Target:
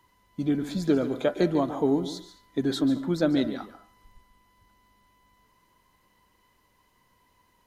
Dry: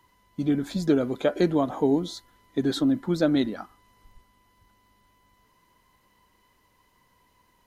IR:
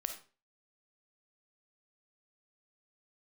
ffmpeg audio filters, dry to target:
-filter_complex "[0:a]asplit=2[a][b];[1:a]atrim=start_sample=2205,adelay=144[c];[b][c]afir=irnorm=-1:irlink=0,volume=-11.5dB[d];[a][d]amix=inputs=2:normalize=0,volume=-1.5dB"

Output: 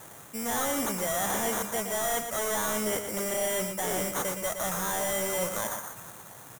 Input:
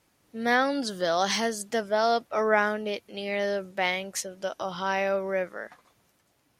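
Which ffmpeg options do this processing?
-filter_complex "[0:a]lowshelf=f=200:t=q:w=1.5:g=9.5,acrusher=samples=17:mix=1:aa=0.000001,aexciter=amount=5.8:drive=6.7:freq=6.6k,areverse,acompressor=threshold=-32dB:ratio=4,areverse,asplit=2[a][b];[b]highpass=f=720:p=1,volume=32dB,asoftclip=type=tanh:threshold=-15dB[c];[a][c]amix=inputs=2:normalize=0,lowpass=f=4.9k:p=1,volume=-6dB,aecho=1:1:117:0.422,volume=-3dB"

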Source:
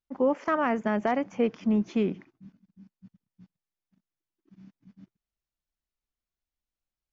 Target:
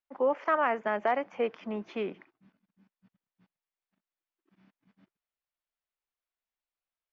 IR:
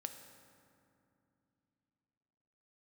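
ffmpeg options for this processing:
-filter_complex "[0:a]acrossover=split=420 3900:gain=0.141 1 0.1[a][b][c];[a][b][c]amix=inputs=3:normalize=0,volume=1dB"

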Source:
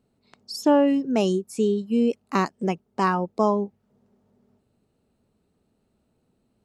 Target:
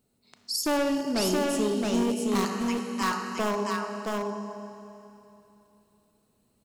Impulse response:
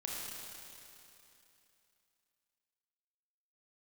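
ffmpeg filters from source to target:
-filter_complex "[0:a]asettb=1/sr,asplit=3[a][b][c];[a]atrim=end=2.454[d];[b]atrim=start=2.45:end=3.37,asetpts=PTS-STARTPTS,afade=t=in:d=0.004:c=qsin,afade=t=out:st=0.916:d=0.004:c=qsin,highpass=f=1.1k:w=0.5412,highpass=f=1.1k:w=1.3066[e];[c]atrim=start=3.366[f];[d][e]acrossfade=d=0.004:c1=hsin:c2=qsin[g];[g][f]acrossfade=d=0.004:c1=qsin:c2=hsin,asplit=2[h][i];[1:a]atrim=start_sample=2205[j];[i][j]afir=irnorm=-1:irlink=0,volume=-1.5dB[k];[h][k]amix=inputs=2:normalize=0,volume=14.5dB,asoftclip=hard,volume=-14.5dB,crystalizer=i=3:c=0,asettb=1/sr,asplit=3[l][m][n];[l]atrim=end=0.774[o];[m]atrim=start=0.77:end=1.94,asetpts=PTS-STARTPTS,afade=t=in:d=0.004:c=qsin,afade=t=out:st=1.166:d=0.004:c=qsin,adynamicsmooth=sensitivity=8:basefreq=5.7k[p];[n]atrim=start=1.936[q];[o][p]acrossfade=d=0.004:c1=hsin:c2=qsin[r];[r][q]acrossfade=d=0.004:c1=qsin:c2=hsin,aecho=1:1:670:0.708,volume=-8.5dB"

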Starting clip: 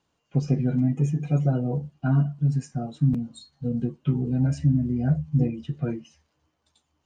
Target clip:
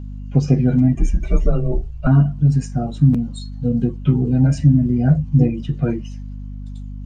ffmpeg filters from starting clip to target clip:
-filter_complex "[0:a]aeval=exprs='val(0)+0.0141*(sin(2*PI*50*n/s)+sin(2*PI*2*50*n/s)/2+sin(2*PI*3*50*n/s)/3+sin(2*PI*4*50*n/s)/4+sin(2*PI*5*50*n/s)/5)':c=same,asettb=1/sr,asplit=3[a][b][c];[a]atrim=end=0.954[d];[b]atrim=start=0.95:end=2.07,asetpts=PTS-STARTPTS,afade=t=in:d=0.004:c=qsin,afade=t=out:st=1.116:d=0.004:c=qsin,afreqshift=-110[e];[c]atrim=start=2.066[f];[d][e]acrossfade=d=0.004:c1=hsin:c2=qsin[g];[g][f]acrossfade=d=0.004:c1=qsin:c2=hsin,volume=8dB"

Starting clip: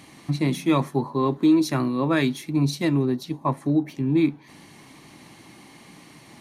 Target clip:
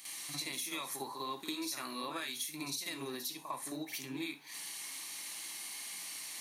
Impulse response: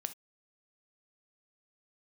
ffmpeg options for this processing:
-filter_complex "[0:a]aderivative,alimiter=level_in=10dB:limit=-24dB:level=0:latency=1:release=192,volume=-10dB,acompressor=threshold=-48dB:ratio=6,asplit=2[a][b];[1:a]atrim=start_sample=2205,lowshelf=f=420:g=-3.5,adelay=52[c];[b][c]afir=irnorm=-1:irlink=0,volume=10dB[d];[a][d]amix=inputs=2:normalize=0,volume=3dB"

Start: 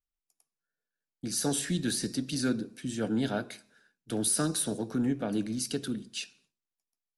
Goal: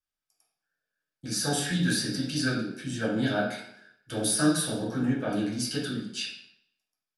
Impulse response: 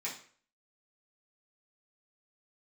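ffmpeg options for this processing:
-filter_complex "[0:a]equalizer=f=2.1k:w=1.5:g=2.5[a];[1:a]atrim=start_sample=2205,asetrate=30429,aresample=44100[b];[a][b]afir=irnorm=-1:irlink=0"

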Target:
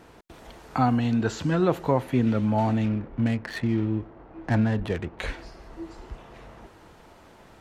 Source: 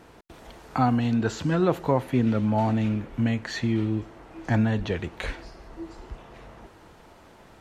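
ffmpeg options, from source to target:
-filter_complex "[0:a]asettb=1/sr,asplit=3[a][b][c];[a]atrim=end=2.854[d];[b]atrim=start=2.85:end=5.19,asetpts=PTS-STARTPTS,afade=t=in:d=0.004:c=qsin,afade=t=out:st=2.336:d=0.004:c=qsin,adynamicsmooth=sensitivity=5:basefreq=1.3k[e];[c]atrim=start=5.186[f];[d][e]acrossfade=d=0.004:c1=hsin:c2=qsin[g];[g][f]acrossfade=d=0.004:c1=qsin:c2=hsin"

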